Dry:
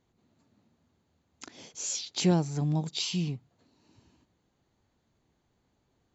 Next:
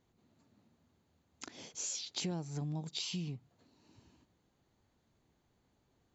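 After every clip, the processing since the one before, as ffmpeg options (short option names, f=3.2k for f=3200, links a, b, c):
-af "acompressor=threshold=-35dB:ratio=5,volume=-1.5dB"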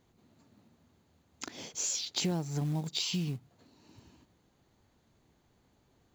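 -af "acrusher=bits=6:mode=log:mix=0:aa=0.000001,volume=6dB"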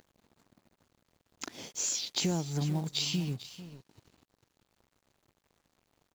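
-af "aecho=1:1:445:0.211,acompressor=mode=upward:threshold=-50dB:ratio=2.5,aeval=exprs='sgn(val(0))*max(abs(val(0))-0.00158,0)':c=same,volume=1.5dB"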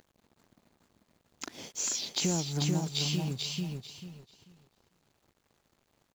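-af "aecho=1:1:440|880|1320:0.631|0.126|0.0252"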